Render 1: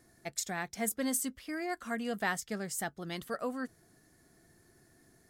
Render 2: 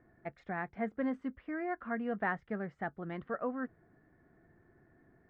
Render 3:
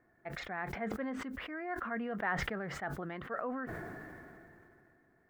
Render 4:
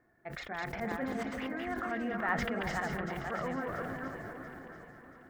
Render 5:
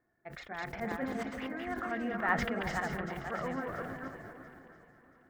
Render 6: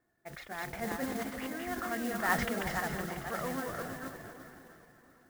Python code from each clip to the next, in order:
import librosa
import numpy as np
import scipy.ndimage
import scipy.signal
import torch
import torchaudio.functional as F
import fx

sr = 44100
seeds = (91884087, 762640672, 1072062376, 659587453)

y1 = scipy.signal.sosfilt(scipy.signal.butter(4, 1900.0, 'lowpass', fs=sr, output='sos'), x)
y2 = fx.low_shelf(y1, sr, hz=400.0, db=-9.5)
y2 = fx.sustainer(y2, sr, db_per_s=21.0)
y3 = fx.reverse_delay_fb(y2, sr, ms=255, feedback_pct=41, wet_db=-2.5)
y3 = fx.echo_alternate(y3, sr, ms=342, hz=1000.0, feedback_pct=63, wet_db=-7.0)
y4 = fx.upward_expand(y3, sr, threshold_db=-50.0, expansion=1.5)
y4 = y4 * 10.0 ** (3.0 / 20.0)
y5 = fx.mod_noise(y4, sr, seeds[0], snr_db=12)